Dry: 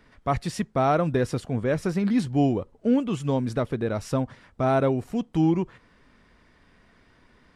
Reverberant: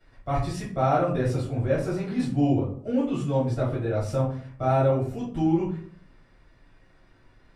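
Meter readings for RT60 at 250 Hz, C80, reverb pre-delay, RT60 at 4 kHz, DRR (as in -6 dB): 0.70 s, 10.5 dB, 3 ms, 0.30 s, -11.0 dB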